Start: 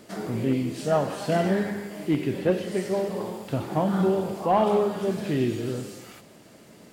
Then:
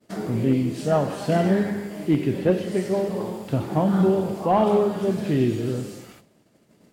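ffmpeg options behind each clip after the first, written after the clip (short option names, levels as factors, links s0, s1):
-af "agate=range=0.0224:threshold=0.00891:ratio=3:detection=peak,lowshelf=f=410:g=5.5"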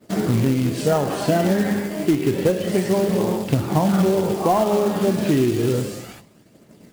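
-af "aphaser=in_gain=1:out_gain=1:delay=3.9:decay=0.3:speed=0.3:type=triangular,acompressor=threshold=0.0891:ratio=16,acrusher=bits=4:mode=log:mix=0:aa=0.000001,volume=2.24"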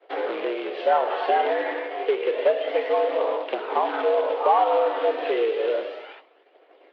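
-af "highpass=f=350:t=q:w=0.5412,highpass=f=350:t=q:w=1.307,lowpass=f=3300:t=q:w=0.5176,lowpass=f=3300:t=q:w=0.7071,lowpass=f=3300:t=q:w=1.932,afreqshift=92"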